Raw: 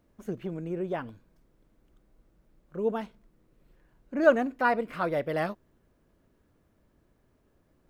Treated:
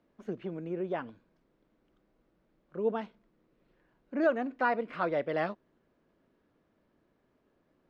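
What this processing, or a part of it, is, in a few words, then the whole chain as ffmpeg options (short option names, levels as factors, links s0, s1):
DJ mixer with the lows and highs turned down: -filter_complex "[0:a]acrossover=split=160 5200:gain=0.224 1 0.0708[s0][s1][s2];[s0][s1][s2]amix=inputs=3:normalize=0,alimiter=limit=0.178:level=0:latency=1:release=265,volume=0.841"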